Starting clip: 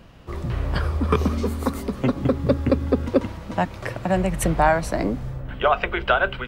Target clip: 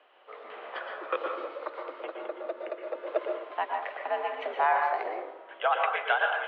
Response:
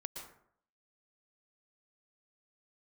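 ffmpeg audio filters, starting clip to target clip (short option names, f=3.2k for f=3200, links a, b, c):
-filter_complex "[0:a]asettb=1/sr,asplit=3[a][b][c];[a]atrim=end=1.344[d];[b]atrim=start=1.34:end=2.95,asetpts=PTS-STARTPTS,afade=t=in:d=0.004:c=qsin,afade=t=out:st=1.606:d=0.004:c=qsin,acompressor=threshold=-21dB:ratio=6[e];[c]atrim=start=2.946[f];[d][e]acrossfade=d=0.004:c1=hsin:c2=qsin[g];[g][f]acrossfade=d=0.004:c1=qsin:c2=hsin,highpass=f=400:t=q:w=0.5412,highpass=f=400:t=q:w=1.307,lowpass=f=3.3k:t=q:w=0.5176,lowpass=f=3.3k:t=q:w=0.7071,lowpass=f=3.3k:t=q:w=1.932,afreqshift=82[h];[1:a]atrim=start_sample=2205[i];[h][i]afir=irnorm=-1:irlink=0,volume=-3dB"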